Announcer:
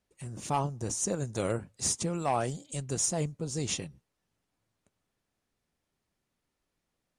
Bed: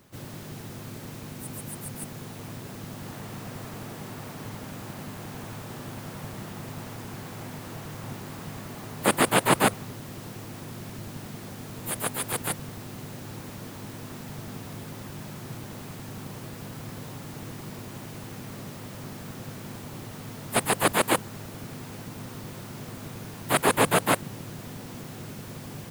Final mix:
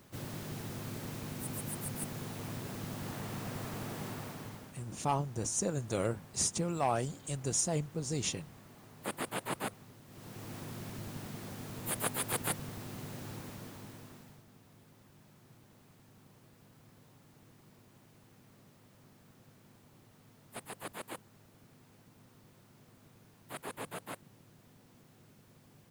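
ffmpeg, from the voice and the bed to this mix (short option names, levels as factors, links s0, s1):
-filter_complex "[0:a]adelay=4550,volume=0.794[s0];[1:a]volume=3.16,afade=t=out:st=4.07:d=0.7:silence=0.188365,afade=t=in:st=10.07:d=0.45:silence=0.251189,afade=t=out:st=13.26:d=1.18:silence=0.141254[s1];[s0][s1]amix=inputs=2:normalize=0"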